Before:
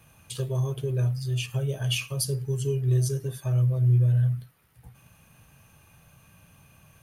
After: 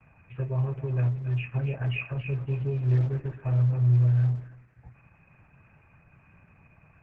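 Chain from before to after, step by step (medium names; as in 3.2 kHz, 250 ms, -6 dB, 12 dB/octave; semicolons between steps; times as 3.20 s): rippled Chebyshev low-pass 2.6 kHz, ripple 3 dB; thinning echo 277 ms, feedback 30%, high-pass 1 kHz, level -8 dB; gate with hold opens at -54 dBFS; peaking EQ 440 Hz -7 dB 1.1 oct; trim +3 dB; Opus 12 kbps 48 kHz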